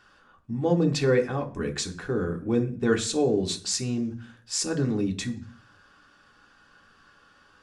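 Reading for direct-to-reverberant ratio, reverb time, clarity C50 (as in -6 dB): 3.0 dB, 0.45 s, 15.0 dB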